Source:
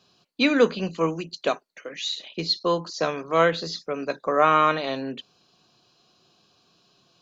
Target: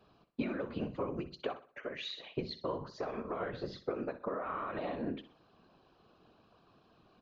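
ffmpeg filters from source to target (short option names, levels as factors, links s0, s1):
-filter_complex "[0:a]lowpass=1700,alimiter=limit=0.119:level=0:latency=1:release=87,acompressor=threshold=0.0178:ratio=10,afftfilt=real='hypot(re,im)*cos(2*PI*random(0))':imag='hypot(re,im)*sin(2*PI*random(1))':win_size=512:overlap=0.75,asplit=2[s0][s1];[s1]aecho=0:1:62|124|186|248:0.2|0.0738|0.0273|0.0101[s2];[s0][s2]amix=inputs=2:normalize=0,volume=2.24"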